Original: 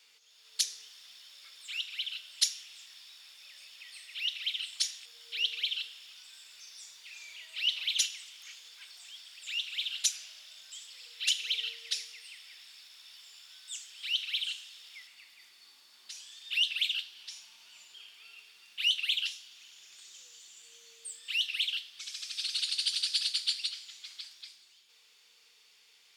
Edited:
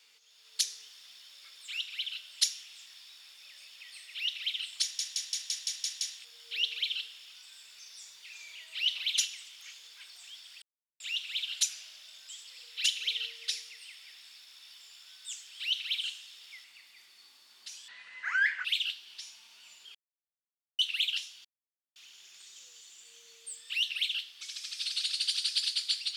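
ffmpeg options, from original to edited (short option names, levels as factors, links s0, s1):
-filter_complex "[0:a]asplit=14[s0][s1][s2][s3][s4][s5][s6][s7][s8][s9][s10][s11][s12][s13];[s0]atrim=end=4.992[s14];[s1]atrim=start=4.818:end=4.992[s15];[s2]atrim=start=4.818:end=4.992[s16];[s3]atrim=start=4.818:end=4.992[s17];[s4]atrim=start=4.818:end=4.992[s18];[s5]atrim=start=4.818:end=4.992[s19];[s6]atrim=start=4.818:end=4.992[s20];[s7]atrim=start=4.818:end=9.43,asetpts=PTS-STARTPTS,afade=t=out:st=4.608:d=0.004:c=hsin,apad=pad_dur=0.38[s21];[s8]atrim=start=9.43:end=16.314,asetpts=PTS-STARTPTS,afade=t=in:d=0.004:c=hsin[s22];[s9]atrim=start=16.31:end=16.74,asetpts=PTS-STARTPTS,asetrate=24696,aresample=44100,atrim=end_sample=33862,asetpts=PTS-STARTPTS[s23];[s10]atrim=start=16.736:end=18.04,asetpts=PTS-STARTPTS,afade=t=out:st=1.3:d=0.004:c=hsin[s24];[s11]atrim=start=18.04:end=18.88,asetpts=PTS-STARTPTS,volume=0[s25];[s12]atrim=start=18.88:end=19.54,asetpts=PTS-STARTPTS,afade=t=in:d=0.004:c=hsin,afade=t=out:st=0.656:d=0.004:c=hsin,apad=pad_dur=0.51[s26];[s13]atrim=start=19.54,asetpts=PTS-STARTPTS,afade=t=in:d=0.004:c=hsin[s27];[s14][s15]acrossfade=d=0.004:c1=hsin:c2=hsin[s28];[s28][s16]acrossfade=d=0.004:c1=hsin:c2=hsin[s29];[s29][s17]acrossfade=d=0.004:c1=hsin:c2=hsin[s30];[s30][s18]acrossfade=d=0.004:c1=hsin:c2=hsin[s31];[s31][s19]acrossfade=d=0.004:c1=hsin:c2=hsin[s32];[s32][s20]acrossfade=d=0.004:c1=hsin:c2=hsin[s33];[s21][s22]concat=n=2:v=0:a=1[s34];[s33][s34]acrossfade=d=0.004:c1=hsin:c2=hsin[s35];[s35][s23]acrossfade=d=0.004:c1=hsin:c2=hsin[s36];[s24][s25][s26][s27]concat=n=4:v=0:a=1[s37];[s36][s37]acrossfade=d=0.004:c1=hsin:c2=hsin"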